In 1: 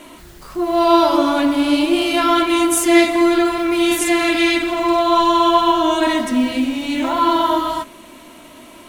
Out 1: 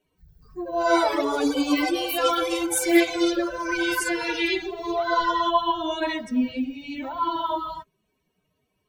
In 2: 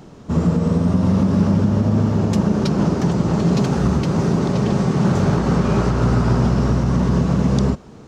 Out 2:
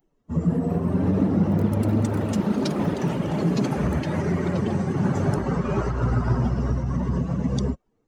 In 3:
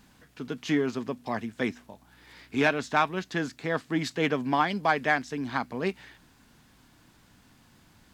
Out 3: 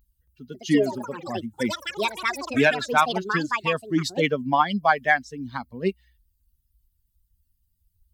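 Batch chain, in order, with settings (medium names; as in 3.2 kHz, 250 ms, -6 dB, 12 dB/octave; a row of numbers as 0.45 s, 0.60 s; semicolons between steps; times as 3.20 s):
expander on every frequency bin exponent 2; ever faster or slower copies 275 ms, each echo +7 st, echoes 3, each echo -6 dB; normalise loudness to -24 LUFS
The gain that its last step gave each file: -4.0 dB, -1.5 dB, +8.0 dB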